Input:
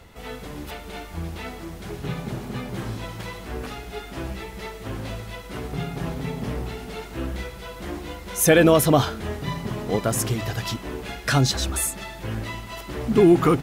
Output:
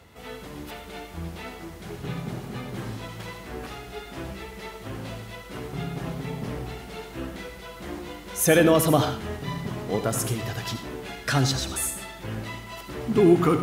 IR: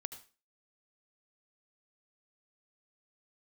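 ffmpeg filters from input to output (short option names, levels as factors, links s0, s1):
-filter_complex "[0:a]highpass=70[s0];[1:a]atrim=start_sample=2205[s1];[s0][s1]afir=irnorm=-1:irlink=0"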